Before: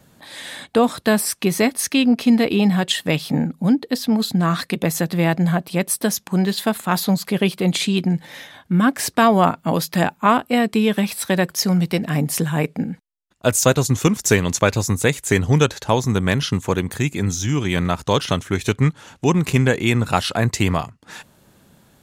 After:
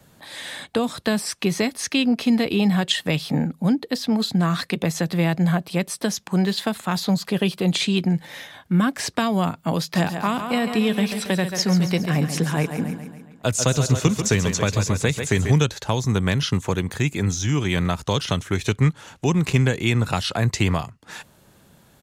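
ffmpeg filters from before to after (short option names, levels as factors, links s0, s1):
-filter_complex "[0:a]asettb=1/sr,asplit=3[s0][s1][s2];[s0]atrim=end=7.144[s3];[s1]atrim=start=7.14:end=7.8,asetpts=PTS-STARTPTS,afade=t=in:d=0.004:c=qsin,afade=t=out:st=0.656:d=0.004:c=qsin,bandreject=f=2200:w=12[s4];[s2]atrim=start=7.796[s5];[s3][s4]acrossfade=d=0.004:c1=hsin:c2=qsin[s6];[s6][s5]acrossfade=d=0.004:c1=qsin:c2=hsin,asplit=3[s7][s8][s9];[s7]afade=t=out:st=9.94:d=0.02[s10];[s8]aecho=1:1:138|276|414|552|690|828:0.316|0.168|0.0888|0.0471|0.025|0.0132,afade=t=in:st=9.94:d=0.02,afade=t=out:st=15.51:d=0.02[s11];[s9]afade=t=in:st=15.51:d=0.02[s12];[s10][s11][s12]amix=inputs=3:normalize=0,acrossover=split=7500[s13][s14];[s14]acompressor=threshold=0.00631:ratio=4:attack=1:release=60[s15];[s13][s15]amix=inputs=2:normalize=0,equalizer=f=250:t=o:w=0.77:g=-3,acrossover=split=250|3000[s16][s17][s18];[s17]acompressor=threshold=0.0794:ratio=6[s19];[s16][s19][s18]amix=inputs=3:normalize=0"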